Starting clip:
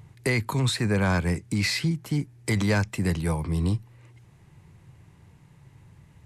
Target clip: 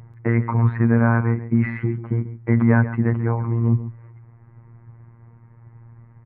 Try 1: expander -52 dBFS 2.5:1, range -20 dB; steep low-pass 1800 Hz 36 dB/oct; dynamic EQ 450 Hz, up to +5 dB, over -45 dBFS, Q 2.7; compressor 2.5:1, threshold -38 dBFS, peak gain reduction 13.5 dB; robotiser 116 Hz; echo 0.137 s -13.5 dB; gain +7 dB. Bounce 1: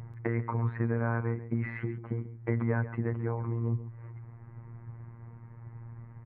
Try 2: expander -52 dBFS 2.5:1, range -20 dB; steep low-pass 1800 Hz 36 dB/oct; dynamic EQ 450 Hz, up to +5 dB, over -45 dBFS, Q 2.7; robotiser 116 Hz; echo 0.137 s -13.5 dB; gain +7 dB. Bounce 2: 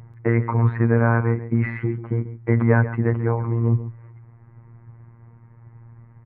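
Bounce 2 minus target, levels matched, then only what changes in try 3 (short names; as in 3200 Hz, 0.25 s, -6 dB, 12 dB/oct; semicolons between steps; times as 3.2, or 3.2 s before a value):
500 Hz band +4.0 dB
change: dynamic EQ 200 Hz, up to +5 dB, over -45 dBFS, Q 2.7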